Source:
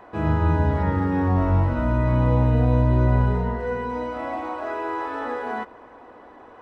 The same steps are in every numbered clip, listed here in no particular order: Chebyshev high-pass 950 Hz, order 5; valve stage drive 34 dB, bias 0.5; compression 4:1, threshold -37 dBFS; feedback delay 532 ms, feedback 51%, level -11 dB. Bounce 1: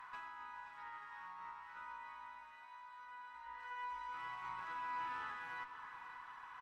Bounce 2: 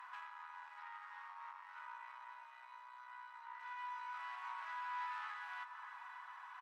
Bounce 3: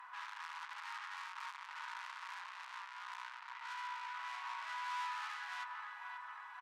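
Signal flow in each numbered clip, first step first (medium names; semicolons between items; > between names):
compression > Chebyshev high-pass > valve stage > feedback delay; compression > feedback delay > valve stage > Chebyshev high-pass; feedback delay > valve stage > compression > Chebyshev high-pass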